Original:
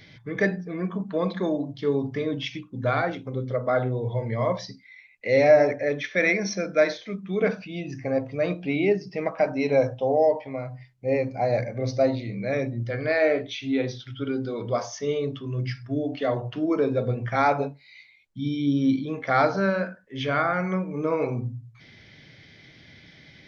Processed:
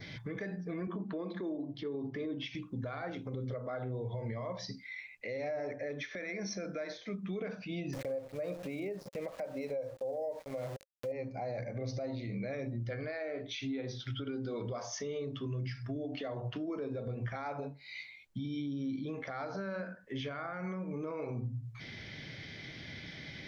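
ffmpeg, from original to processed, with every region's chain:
ffmpeg -i in.wav -filter_complex "[0:a]asettb=1/sr,asplit=3[link_01][link_02][link_03];[link_01]atrim=end=0.874[link_04];[link_02]atrim=start=0.87:end=2.55,asetpts=PTS-STARTPTS,afade=type=in:duration=0.004:curve=qsin,afade=type=out:start_time=1.676:duration=0.004:curve=qsin,highpass=130,lowpass=4800,equalizer=frequency=340:width=4.5:gain=12[link_05];[link_03]atrim=start=2.546[link_06];[link_04][link_05]acrossfade=duration=0.004:curve1=hsin:curve2=qsin[link_07];[link_07][link_06]acrossfade=duration=0.004:curve1=qsin:curve2=hsin,asettb=1/sr,asplit=3[link_08][link_09][link_10];[link_08]atrim=end=7.934[link_11];[link_09]atrim=start=7.93:end=11.12,asetpts=PTS-STARTPTS,afade=type=in:duration=0.004:curve=qsin,afade=type=out:start_time=3.186:duration=0.004:curve=qsin,aeval=exprs='val(0)*gte(abs(val(0)),0.0133)':channel_layout=same,equalizer=frequency=540:width=4.2:gain=13[link_12];[link_10]atrim=start=11.116[link_13];[link_11][link_12]acrossfade=duration=0.004:curve1=hsin:curve2=qsin[link_14];[link_14][link_13]acrossfade=duration=0.004:curve1=qsin:curve2=hsin,adynamicequalizer=threshold=0.00398:dfrequency=2900:dqfactor=2.6:tfrequency=2900:tqfactor=2.6:attack=5:release=100:ratio=0.375:range=2.5:mode=cutabove:tftype=bell,acompressor=threshold=-38dB:ratio=4,alimiter=level_in=10.5dB:limit=-24dB:level=0:latency=1:release=85,volume=-10.5dB,volume=4dB" out.wav

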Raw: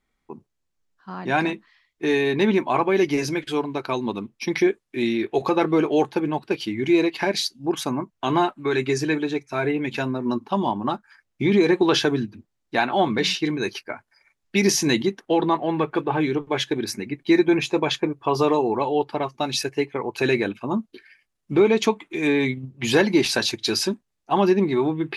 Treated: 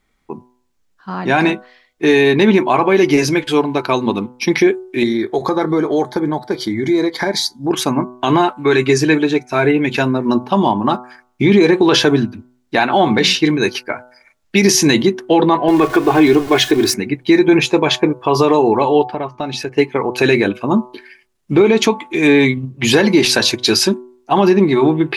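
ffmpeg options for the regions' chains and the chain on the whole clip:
ffmpeg -i in.wav -filter_complex "[0:a]asettb=1/sr,asplit=3[link_01][link_02][link_03];[link_01]atrim=end=5.034[link_04];[link_02]atrim=start=5.03:end=7.71,asetpts=PTS-STARTPTS,afade=type=in:duration=0.004:curve=qsin,afade=type=out:start_time=2.676:duration=0.004:curve=qsin,acompressor=threshold=-26dB:ratio=2:attack=3.2:release=140:knee=1:detection=peak,asuperstop=centerf=2700:order=4:qfactor=2.5[link_05];[link_03]atrim=start=7.706[link_06];[link_04][link_05]acrossfade=duration=0.004:curve1=hsin:curve2=qsin[link_07];[link_07][link_06]acrossfade=duration=0.004:curve1=qsin:curve2=hsin,asettb=1/sr,asplit=3[link_08][link_09][link_10];[link_08]atrim=end=15.684[link_11];[link_09]atrim=start=15.68:end=16.94,asetpts=PTS-STARTPTS,afade=type=in:duration=0.004:curve=qsin,afade=type=out:start_time=1.256:duration=0.004:curve=qsin,aeval=exprs='val(0)+0.5*0.02*sgn(val(0))':channel_layout=same,aecho=1:1:2.8:0.61,atrim=end_sample=55566[link_12];[link_10]atrim=start=16.936[link_13];[link_11][link_12]acrossfade=duration=0.004:curve1=hsin:curve2=qsin[link_14];[link_14][link_13]acrossfade=duration=0.004:curve1=qsin:curve2=hsin,asettb=1/sr,asplit=3[link_15][link_16][link_17];[link_15]atrim=end=19.054[link_18];[link_16]atrim=start=19.05:end=19.78,asetpts=PTS-STARTPTS,afade=type=in:duration=0.004:curve=qsin,afade=type=out:start_time=0.726:duration=0.004:curve=qsin,lowpass=frequency=2000:poles=1,acompressor=threshold=-32dB:ratio=2:attack=3.2:release=140:knee=1:detection=peak[link_19];[link_17]atrim=start=19.776[link_20];[link_18][link_19]acrossfade=duration=0.004:curve1=hsin:curve2=qsin[link_21];[link_21][link_20]acrossfade=duration=0.004:curve1=qsin:curve2=hsin,bandreject=frequency=124.4:width_type=h:width=4,bandreject=frequency=248.8:width_type=h:width=4,bandreject=frequency=373.2:width_type=h:width=4,bandreject=frequency=497.6:width_type=h:width=4,bandreject=frequency=622:width_type=h:width=4,bandreject=frequency=746.4:width_type=h:width=4,bandreject=frequency=870.8:width_type=h:width=4,bandreject=frequency=995.2:width_type=h:width=4,bandreject=frequency=1119.6:width_type=h:width=4,bandreject=frequency=1244:width_type=h:width=4,bandreject=frequency=1368.4:width_type=h:width=4,bandreject=frequency=1492.8:width_type=h:width=4,alimiter=level_in=11.5dB:limit=-1dB:release=50:level=0:latency=1,volume=-1.5dB" out.wav

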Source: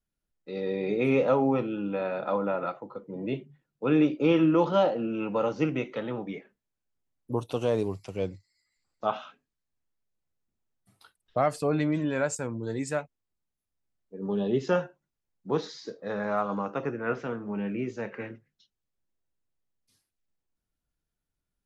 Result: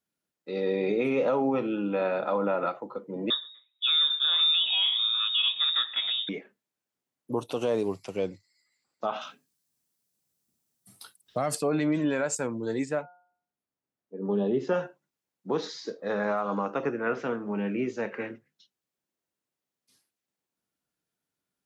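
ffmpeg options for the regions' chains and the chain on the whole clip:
ffmpeg -i in.wav -filter_complex "[0:a]asettb=1/sr,asplit=3[link_01][link_02][link_03];[link_01]atrim=end=3.304[link_04];[link_02]atrim=start=3.3:end=6.29,asetpts=PTS-STARTPTS,afade=type=in:duration=0.004:curve=qsin,afade=type=out:start_time=2.986:duration=0.004:curve=qsin,lowpass=frequency=3300:width_type=q:width=0.5098,lowpass=frequency=3300:width_type=q:width=0.6013,lowpass=frequency=3300:width_type=q:width=0.9,lowpass=frequency=3300:width_type=q:width=2.563,afreqshift=-3900,aecho=1:1:123|246:0.0794|0.0278,atrim=end_sample=131859[link_05];[link_03]atrim=start=6.286[link_06];[link_04][link_05]acrossfade=duration=0.004:curve1=hsin:curve2=qsin[link_07];[link_07][link_06]acrossfade=duration=0.004:curve1=qsin:curve2=hsin,asettb=1/sr,asplit=3[link_08][link_09][link_10];[link_08]atrim=end=9.214[link_11];[link_09]atrim=start=9.21:end=11.55,asetpts=PTS-STARTPTS,afade=type=in:duration=0.004:curve=qsin,afade=type=out:start_time=2.336:duration=0.004:curve=qsin,bass=frequency=250:gain=9,treble=frequency=4000:gain=14,bandreject=frequency=6800:width=21[link_12];[link_10]atrim=start=11.546[link_13];[link_11][link_12]acrossfade=duration=0.004:curve1=hsin:curve2=qsin[link_14];[link_14][link_13]acrossfade=duration=0.004:curve1=qsin:curve2=hsin,asettb=1/sr,asplit=3[link_15][link_16][link_17];[link_15]atrim=end=12.854[link_18];[link_16]atrim=start=12.85:end=14.74,asetpts=PTS-STARTPTS,afade=type=in:duration=0.004:curve=qsin,afade=type=out:start_time=1.886:duration=0.004:curve=qsin,bandreject=frequency=178.8:width_type=h:width=4,bandreject=frequency=357.6:width_type=h:width=4,bandreject=frequency=536.4:width_type=h:width=4,bandreject=frequency=715.2:width_type=h:width=4,bandreject=frequency=894:width_type=h:width=4,bandreject=frequency=1072.8:width_type=h:width=4,bandreject=frequency=1251.6:width_type=h:width=4,bandreject=frequency=1430.4:width_type=h:width=4,acrossover=split=8200[link_19][link_20];[link_20]acompressor=threshold=-54dB:ratio=4:attack=1:release=60[link_21];[link_19][link_21]amix=inputs=2:normalize=0,highshelf=frequency=2200:gain=-11[link_22];[link_17]atrim=start=14.736[link_23];[link_18][link_22]acrossfade=duration=0.004:curve1=hsin:curve2=qsin[link_24];[link_24][link_23]acrossfade=duration=0.004:curve1=qsin:curve2=hsin,alimiter=limit=-20.5dB:level=0:latency=1:release=67,highpass=190,volume=3.5dB" out.wav

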